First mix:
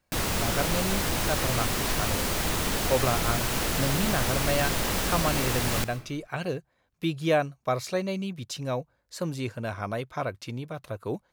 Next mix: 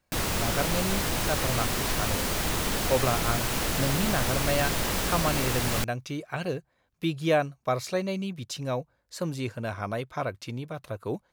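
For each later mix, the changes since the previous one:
reverb: off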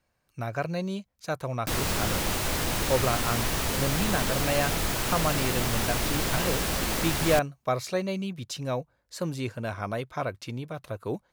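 background: entry +1.55 s

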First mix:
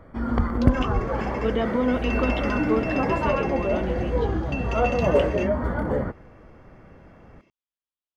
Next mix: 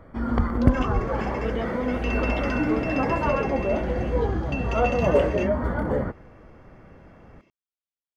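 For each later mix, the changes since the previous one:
speech −5.5 dB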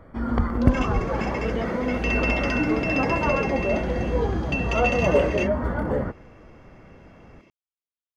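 second sound +6.5 dB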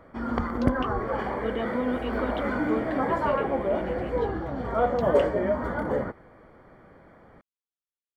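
first sound: add low-shelf EQ 160 Hz −11.5 dB
second sound: muted

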